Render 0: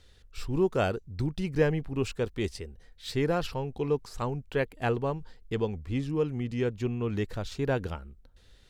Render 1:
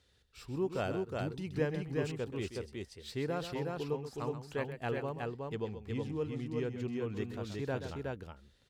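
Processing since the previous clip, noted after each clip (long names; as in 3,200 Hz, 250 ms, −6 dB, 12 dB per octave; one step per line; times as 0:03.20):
high-pass filter 75 Hz
on a send: multi-tap delay 129/367 ms −10.5/−3 dB
on the sum: level −8.5 dB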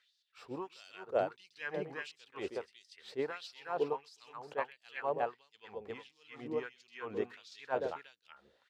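auto-filter high-pass sine 1.5 Hz 500–5,000 Hz
RIAA equalisation playback
level that may rise only so fast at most 440 dB per second
level +1.5 dB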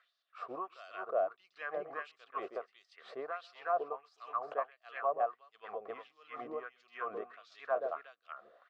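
downward compressor 3 to 1, threshold −45 dBFS, peak gain reduction 14.5 dB
pair of resonant band-passes 890 Hz, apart 0.74 octaves
level +18 dB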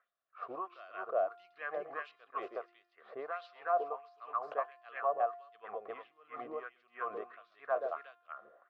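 low-pass that shuts in the quiet parts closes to 1,100 Hz, open at −33 dBFS
dynamic equaliser 180 Hz, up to −5 dB, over −51 dBFS, Q 0.75
tuned comb filter 350 Hz, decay 0.87 s, mix 50%
level +6.5 dB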